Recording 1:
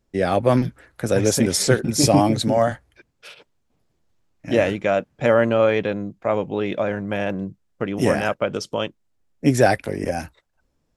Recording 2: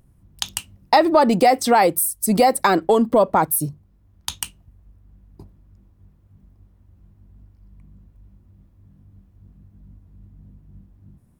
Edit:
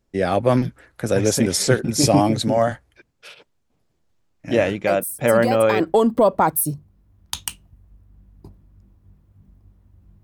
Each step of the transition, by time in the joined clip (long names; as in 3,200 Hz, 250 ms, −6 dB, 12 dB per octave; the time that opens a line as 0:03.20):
recording 1
0:04.87: mix in recording 2 from 0:01.82 0.93 s −8.5 dB
0:05.80: continue with recording 2 from 0:02.75